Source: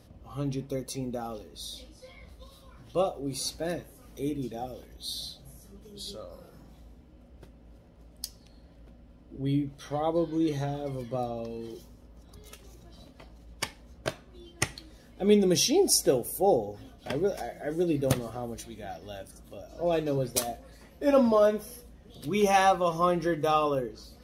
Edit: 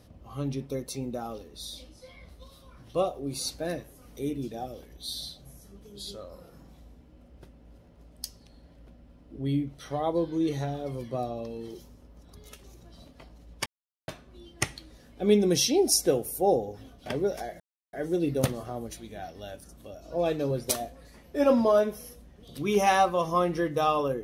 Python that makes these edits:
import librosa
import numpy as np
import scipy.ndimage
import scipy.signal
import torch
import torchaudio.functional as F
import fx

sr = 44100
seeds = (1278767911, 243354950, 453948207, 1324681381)

y = fx.edit(x, sr, fx.silence(start_s=13.66, length_s=0.42),
    fx.insert_silence(at_s=17.6, length_s=0.33), tone=tone)